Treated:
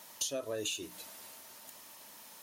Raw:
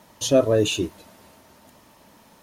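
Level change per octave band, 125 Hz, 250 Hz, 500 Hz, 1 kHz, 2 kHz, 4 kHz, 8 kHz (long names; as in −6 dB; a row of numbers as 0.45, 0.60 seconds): −26.0, −22.0, −19.5, −16.0, −11.5, −10.0, −6.0 decibels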